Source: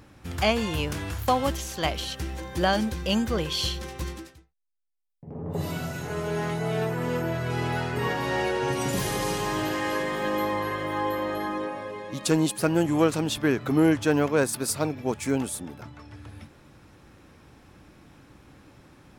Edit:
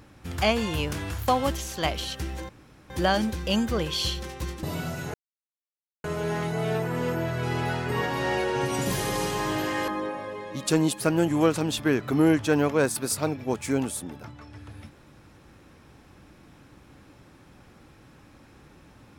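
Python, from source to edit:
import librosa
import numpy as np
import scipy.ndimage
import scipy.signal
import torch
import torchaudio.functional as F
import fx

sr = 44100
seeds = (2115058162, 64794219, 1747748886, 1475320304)

y = fx.edit(x, sr, fx.insert_room_tone(at_s=2.49, length_s=0.41),
    fx.cut(start_s=4.22, length_s=1.38),
    fx.insert_silence(at_s=6.11, length_s=0.9),
    fx.cut(start_s=9.95, length_s=1.51), tone=tone)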